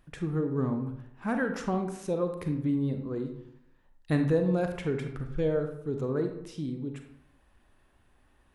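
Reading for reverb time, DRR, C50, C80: 0.80 s, 5.5 dB, 7.0 dB, 10.0 dB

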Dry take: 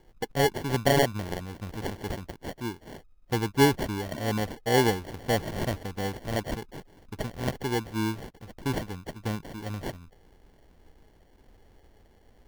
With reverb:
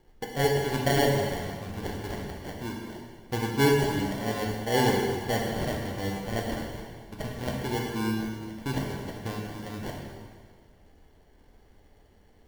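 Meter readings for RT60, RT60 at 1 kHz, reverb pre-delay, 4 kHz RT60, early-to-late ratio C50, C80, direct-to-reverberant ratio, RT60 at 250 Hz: 1.7 s, 1.7 s, 5 ms, 1.6 s, 1.5 dB, 3.0 dB, -1.5 dB, 1.7 s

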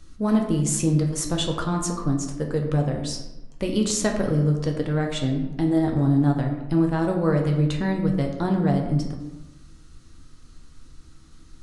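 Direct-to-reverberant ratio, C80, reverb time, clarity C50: 1.5 dB, 8.0 dB, 1.0 s, 6.0 dB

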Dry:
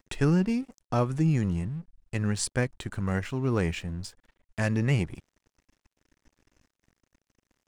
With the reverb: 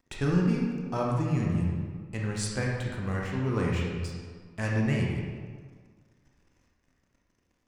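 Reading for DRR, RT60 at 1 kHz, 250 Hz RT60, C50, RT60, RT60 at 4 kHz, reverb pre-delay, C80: -2.5 dB, 1.7 s, 1.7 s, 0.0 dB, 1.7 s, 1.1 s, 22 ms, 2.5 dB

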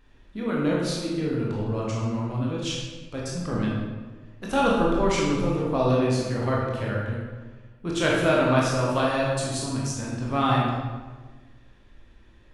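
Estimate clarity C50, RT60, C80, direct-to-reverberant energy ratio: -0.5 dB, 1.4 s, 2.5 dB, -4.5 dB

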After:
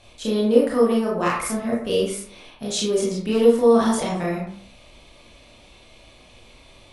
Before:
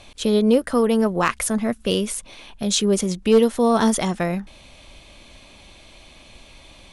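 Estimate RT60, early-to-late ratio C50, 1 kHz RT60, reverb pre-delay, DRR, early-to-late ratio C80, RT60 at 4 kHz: 0.50 s, 2.0 dB, 0.50 s, 23 ms, -5.0 dB, 6.5 dB, 0.35 s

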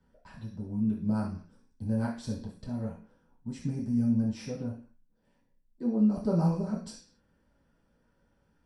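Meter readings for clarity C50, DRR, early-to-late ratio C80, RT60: 7.0 dB, -8.0 dB, 12.0 dB, 0.45 s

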